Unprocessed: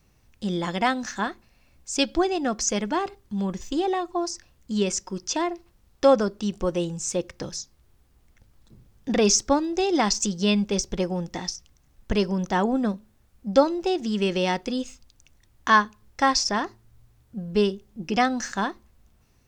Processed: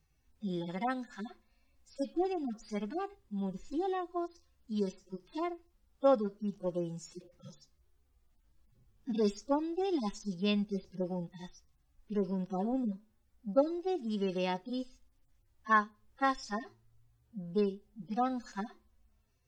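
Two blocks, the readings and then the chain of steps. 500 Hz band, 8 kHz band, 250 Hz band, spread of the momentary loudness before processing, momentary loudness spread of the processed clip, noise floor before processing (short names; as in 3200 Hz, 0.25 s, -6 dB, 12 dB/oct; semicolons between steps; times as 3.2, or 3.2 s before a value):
-9.5 dB, -27.0 dB, -9.0 dB, 14 LU, 16 LU, -62 dBFS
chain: median-filter separation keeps harmonic; gain -9 dB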